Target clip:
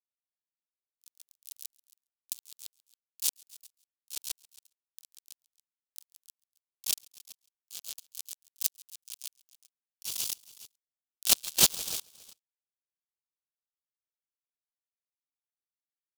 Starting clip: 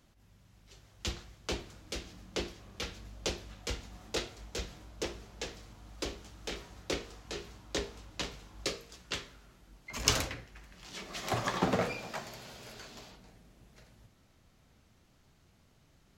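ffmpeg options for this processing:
ffmpeg -i in.wav -filter_complex "[0:a]acrossover=split=2900[link_01][link_02];[link_02]acompressor=threshold=-47dB:ratio=4:attack=1:release=60[link_03];[link_01][link_03]amix=inputs=2:normalize=0,aemphasis=mode=production:type=75kf,aresample=22050,aresample=44100,acrusher=bits=3:mix=0:aa=0.000001,asplit=4[link_04][link_05][link_06][link_07];[link_05]asetrate=22050,aresample=44100,atempo=2,volume=-7dB[link_08];[link_06]asetrate=33038,aresample=44100,atempo=1.33484,volume=-8dB[link_09];[link_07]asetrate=88200,aresample=44100,atempo=0.5,volume=-1dB[link_10];[link_04][link_08][link_09][link_10]amix=inputs=4:normalize=0,asplit=2[link_11][link_12];[link_12]aecho=0:1:137|274|411|548:0.299|0.125|0.0527|0.0221[link_13];[link_11][link_13]amix=inputs=2:normalize=0,aexciter=amount=9.4:drive=3.9:freq=2800,aeval=exprs='val(0)*pow(10,-30*if(lt(mod(-3*n/s,1),2*abs(-3)/1000),1-mod(-3*n/s,1)/(2*abs(-3)/1000),(mod(-3*n/s,1)-2*abs(-3)/1000)/(1-2*abs(-3)/1000))/20)':channel_layout=same,volume=-4.5dB" out.wav

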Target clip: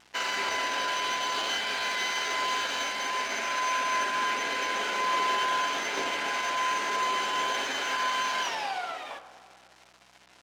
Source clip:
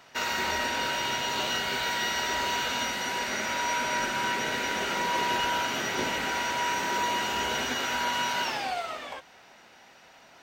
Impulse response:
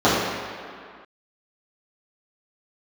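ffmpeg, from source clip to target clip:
-filter_complex "[0:a]acrusher=bits=7:mix=0:aa=0.000001,aeval=exprs='val(0)+0.00178*(sin(2*PI*60*n/s)+sin(2*PI*2*60*n/s)/2+sin(2*PI*3*60*n/s)/3+sin(2*PI*4*60*n/s)/4+sin(2*PI*5*60*n/s)/5)':channel_layout=same,asetrate=46722,aresample=44100,atempo=0.943874,highpass=frequency=580:poles=1,adynamicsmooth=sensitivity=6:basefreq=6800,asplit=2[link_01][link_02];[1:a]atrim=start_sample=2205,asetrate=41013,aresample=44100[link_03];[link_02][link_03]afir=irnorm=-1:irlink=0,volume=-34dB[link_04];[link_01][link_04]amix=inputs=2:normalize=0"

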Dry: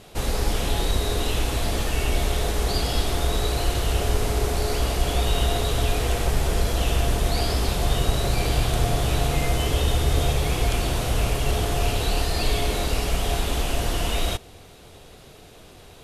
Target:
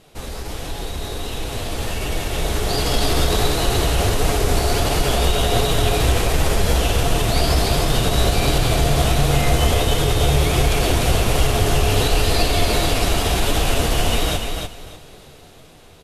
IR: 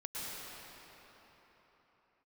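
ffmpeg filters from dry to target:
-filter_complex "[0:a]asettb=1/sr,asplit=3[link_01][link_02][link_03];[link_01]atrim=end=2.734[link_04];[link_02]atrim=start=2.73:end=3.48,asetpts=PTS-STARTPTS,afade=type=in:duration=0.004:curve=qsin,afade=type=out:start_time=0.746:duration=0.004:curve=qsin,acontrast=29[link_05];[link_03]atrim=start=3.476[link_06];[link_04][link_05]acrossfade=duration=0.004:curve1=hsin:curve2=qsin[link_07];[link_07][link_06]acrossfade=duration=0.004:curve1=qsin:curve2=hsin,alimiter=limit=-15.5dB:level=0:latency=1:release=39,flanger=delay=6.2:depth=7.4:regen=42:speed=1.4:shape=sinusoidal,aecho=1:1:297|594|891:0.596|0.137|0.0315,dynaudnorm=framelen=380:gausssize=13:maxgain=11.5dB"

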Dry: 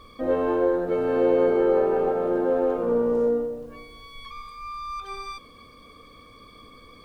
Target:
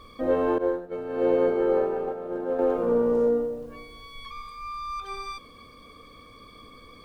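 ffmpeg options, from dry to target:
ffmpeg -i in.wav -filter_complex "[0:a]asettb=1/sr,asplit=3[link_01][link_02][link_03];[link_01]atrim=end=0.584[link_04];[link_02]atrim=start=0.58:end=2.59,asetpts=PTS-STARTPTS,afade=type=in:duration=0.004:curve=qsin,afade=type=out:start_time=2.006:duration=0.004:curve=qsin,agate=range=-33dB:threshold=-16dB:ratio=3:detection=peak[link_05];[link_03]atrim=start=2.586[link_06];[link_04][link_05]acrossfade=duration=0.004:curve1=hsin:curve2=qsin[link_07];[link_07][link_06]acrossfade=duration=0.004:curve1=qsin:curve2=hsin" out.wav

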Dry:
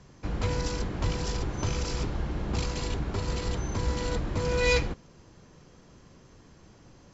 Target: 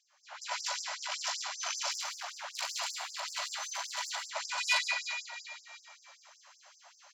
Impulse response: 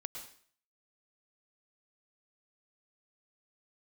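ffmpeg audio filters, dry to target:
-filter_complex "[0:a]asplit=5[link_01][link_02][link_03][link_04][link_05];[link_02]adelay=344,afreqshift=-30,volume=-11dB[link_06];[link_03]adelay=688,afreqshift=-60,volume=-19.6dB[link_07];[link_04]adelay=1032,afreqshift=-90,volume=-28.3dB[link_08];[link_05]adelay=1376,afreqshift=-120,volume=-36.9dB[link_09];[link_01][link_06][link_07][link_08][link_09]amix=inputs=5:normalize=0,asettb=1/sr,asplit=3[link_10][link_11][link_12];[link_10]atrim=end=1.914[link_13];[link_11]atrim=start=1.91:end=4.11,asetpts=PTS-STARTPTS,afade=type=in:duration=0.004:curve=qsin,afade=type=out:start_time=2.196:duration=0.004:curve=qsin,asoftclip=type=hard:threshold=-26.5dB[link_14];[link_12]atrim=start=4.106[link_15];[link_13][link_14]acrossfade=duration=0.004:curve1=hsin:curve2=qsin[link_16];[link_16][link_15]acrossfade=duration=0.004:curve1=qsin:curve2=hsin[link_17];[1:a]atrim=start_sample=2205[link_18];[link_17][link_18]afir=irnorm=-1:irlink=0,dynaudnorm=framelen=220:gausssize=3:maxgain=12dB,asoftclip=type=tanh:threshold=-11dB,afftfilt=real='re*gte(b*sr/1024,540*pow(4900/540,0.5+0.5*sin(2*PI*5.2*pts/sr)))':imag='im*gte(b*sr/1024,540*pow(4900/540,0.5+0.5*sin(2*PI*5.2*pts/sr)))':win_size=1024:overlap=0.75,volume=-4.5dB"

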